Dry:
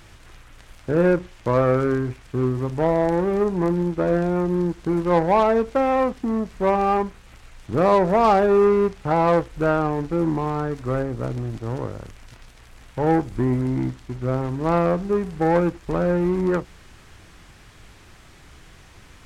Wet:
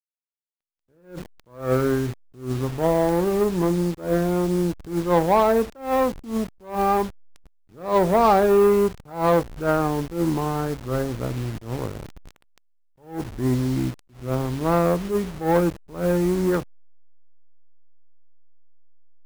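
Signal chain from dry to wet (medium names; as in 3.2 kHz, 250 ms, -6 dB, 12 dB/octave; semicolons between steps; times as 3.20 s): send-on-delta sampling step -31.5 dBFS; attacks held to a fixed rise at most 150 dB/s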